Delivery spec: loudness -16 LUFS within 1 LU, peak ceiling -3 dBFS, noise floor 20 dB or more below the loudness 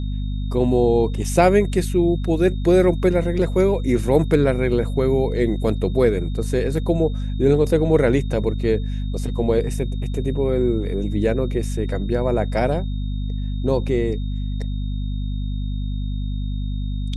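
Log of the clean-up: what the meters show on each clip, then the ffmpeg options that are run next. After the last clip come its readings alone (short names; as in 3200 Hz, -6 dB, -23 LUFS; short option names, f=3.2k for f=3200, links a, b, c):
hum 50 Hz; harmonics up to 250 Hz; hum level -22 dBFS; steady tone 3700 Hz; tone level -46 dBFS; loudness -21.0 LUFS; peak -2.0 dBFS; loudness target -16.0 LUFS
-> -af "bandreject=f=50:t=h:w=4,bandreject=f=100:t=h:w=4,bandreject=f=150:t=h:w=4,bandreject=f=200:t=h:w=4,bandreject=f=250:t=h:w=4"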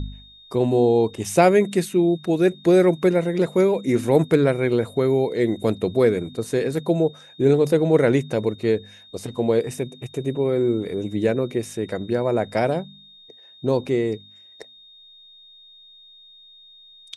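hum none; steady tone 3700 Hz; tone level -46 dBFS
-> -af "bandreject=f=3.7k:w=30"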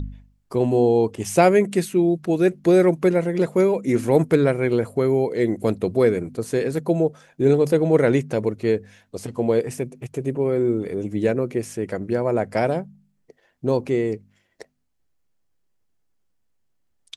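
steady tone none; loudness -21.0 LUFS; peak -3.0 dBFS; loudness target -16.0 LUFS
-> -af "volume=5dB,alimiter=limit=-3dB:level=0:latency=1"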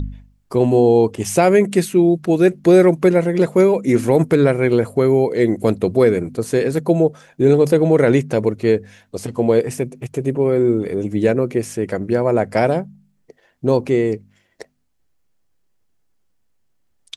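loudness -16.5 LUFS; peak -3.0 dBFS; noise floor -63 dBFS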